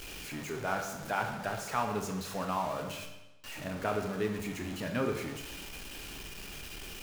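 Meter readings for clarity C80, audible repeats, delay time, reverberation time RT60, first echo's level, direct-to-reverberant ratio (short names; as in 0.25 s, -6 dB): 9.0 dB, none, none, 1.0 s, none, 3.5 dB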